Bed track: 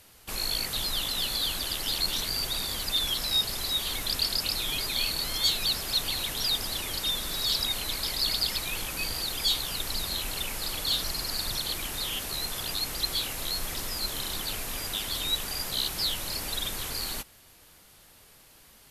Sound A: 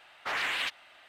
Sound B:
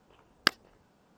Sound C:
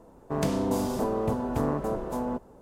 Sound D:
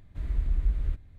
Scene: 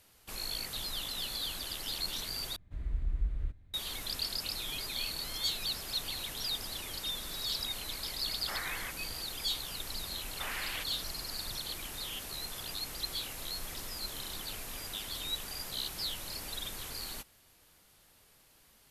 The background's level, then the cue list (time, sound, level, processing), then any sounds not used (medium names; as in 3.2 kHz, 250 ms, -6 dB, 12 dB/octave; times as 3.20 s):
bed track -8 dB
2.56 s: replace with D -6.5 dB
8.22 s: add A -7.5 dB + brick-wall FIR low-pass 2.3 kHz
10.14 s: add A -8.5 dB
not used: B, C